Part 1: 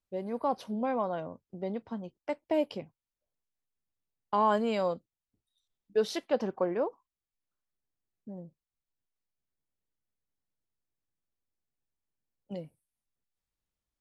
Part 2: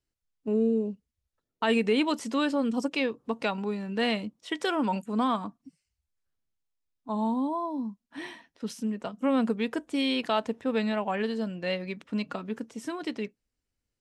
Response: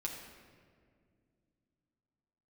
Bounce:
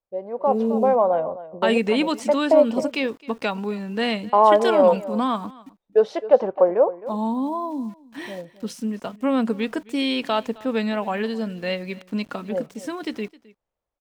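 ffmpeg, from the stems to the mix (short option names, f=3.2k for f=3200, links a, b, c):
-filter_complex "[0:a]lowpass=7.5k,firequalizer=gain_entry='entry(260,0);entry(530,14);entry(1500,3);entry(4200,-6)':delay=0.05:min_phase=1,volume=-5.5dB,asplit=2[a][b];[b]volume=-15.5dB[c];[1:a]aeval=exprs='val(0)*gte(abs(val(0)),0.00282)':c=same,volume=-3.5dB,asplit=2[d][e];[e]volume=-22dB[f];[c][f]amix=inputs=2:normalize=0,aecho=0:1:263:1[g];[a][d][g]amix=inputs=3:normalize=0,dynaudnorm=f=150:g=7:m=7.5dB"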